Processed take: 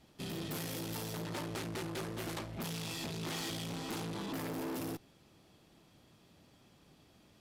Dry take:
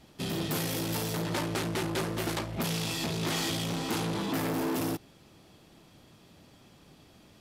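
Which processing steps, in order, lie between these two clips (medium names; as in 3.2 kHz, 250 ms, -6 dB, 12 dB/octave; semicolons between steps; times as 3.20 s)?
valve stage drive 27 dB, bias 0.4; trim -5.5 dB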